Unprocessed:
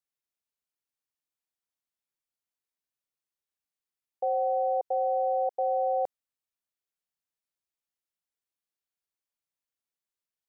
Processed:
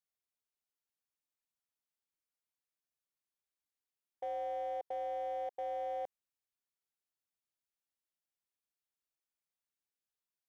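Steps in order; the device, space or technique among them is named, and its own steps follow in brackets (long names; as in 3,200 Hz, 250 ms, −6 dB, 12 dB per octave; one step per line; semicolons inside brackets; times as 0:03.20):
limiter into clipper (brickwall limiter −27 dBFS, peak gain reduction 6.5 dB; hard clipping −29 dBFS, distortion −22 dB)
level −4.5 dB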